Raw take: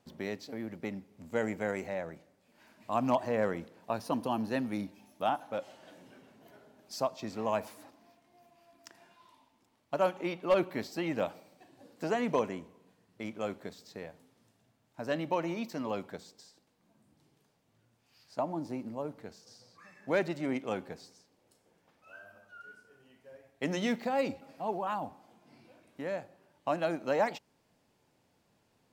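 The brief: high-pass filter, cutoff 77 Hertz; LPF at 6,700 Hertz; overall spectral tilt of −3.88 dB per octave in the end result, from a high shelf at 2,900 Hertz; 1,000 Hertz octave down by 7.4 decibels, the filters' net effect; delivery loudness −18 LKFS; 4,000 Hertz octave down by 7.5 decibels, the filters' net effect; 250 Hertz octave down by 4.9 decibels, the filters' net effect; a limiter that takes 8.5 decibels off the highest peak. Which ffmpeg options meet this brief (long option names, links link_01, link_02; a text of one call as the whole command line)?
ffmpeg -i in.wav -af "highpass=77,lowpass=6700,equalizer=frequency=250:width_type=o:gain=-5.5,equalizer=frequency=1000:width_type=o:gain=-9,highshelf=frequency=2900:gain=-6.5,equalizer=frequency=4000:width_type=o:gain=-4,volume=24dB,alimiter=limit=-5.5dB:level=0:latency=1" out.wav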